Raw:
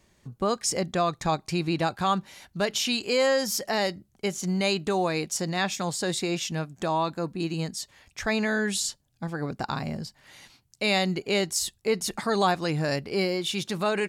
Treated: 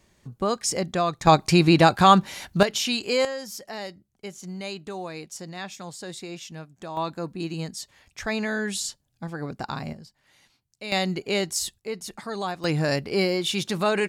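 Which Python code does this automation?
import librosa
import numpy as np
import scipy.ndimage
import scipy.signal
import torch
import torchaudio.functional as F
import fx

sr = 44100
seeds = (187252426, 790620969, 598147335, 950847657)

y = fx.gain(x, sr, db=fx.steps((0.0, 1.0), (1.27, 10.0), (2.63, 1.0), (3.25, -9.0), (6.97, -1.5), (9.93, -10.0), (10.92, 0.0), (11.79, -7.0), (12.64, 3.0)))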